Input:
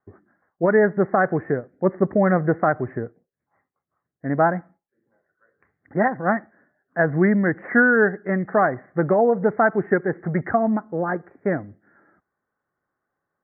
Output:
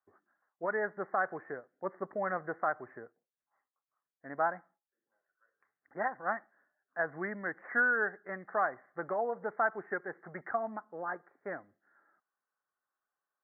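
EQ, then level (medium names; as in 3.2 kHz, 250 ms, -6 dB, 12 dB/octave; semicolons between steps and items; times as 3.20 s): band-pass filter 1.2 kHz, Q 1.2; -8.5 dB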